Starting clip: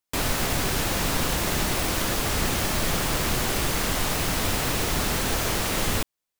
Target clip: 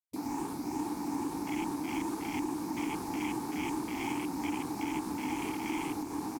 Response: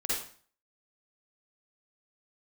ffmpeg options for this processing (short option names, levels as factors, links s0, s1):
-filter_complex "[0:a]afftfilt=real='re*pow(10,6/40*sin(2*PI*(0.67*log(max(b,1)*sr/1024/100)/log(2)-(2.4)*(pts-256)/sr)))':imag='im*pow(10,6/40*sin(2*PI*(0.67*log(max(b,1)*sr/1024/100)/log(2)-(2.4)*(pts-256)/sr)))':win_size=1024:overlap=0.75,asplit=2[s0][s1];[s1]aecho=0:1:660|1221|1698|2103|2448:0.631|0.398|0.251|0.158|0.1[s2];[s0][s2]amix=inputs=2:normalize=0,tremolo=f=2.4:d=0.36,asplit=3[s3][s4][s5];[s3]bandpass=f=300:t=q:w=8,volume=1[s6];[s4]bandpass=f=870:t=q:w=8,volume=0.501[s7];[s5]bandpass=f=2240:t=q:w=8,volume=0.355[s8];[s6][s7][s8]amix=inputs=3:normalize=0,acompressor=threshold=0.0126:ratio=4,aexciter=amount=8.4:drive=2.7:freq=4500,afwtdn=0.00501,highshelf=f=4600:g=11,volume=2.24"